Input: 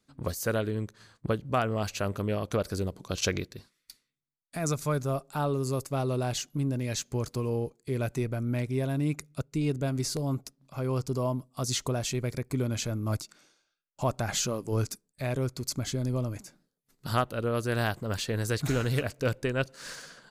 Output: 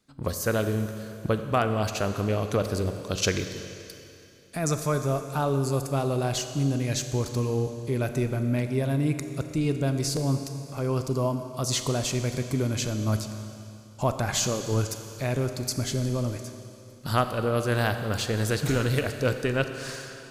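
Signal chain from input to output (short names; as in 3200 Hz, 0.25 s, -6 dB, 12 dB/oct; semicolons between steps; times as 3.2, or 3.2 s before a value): Schroeder reverb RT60 2.8 s, combs from 29 ms, DRR 7.5 dB; gain +3 dB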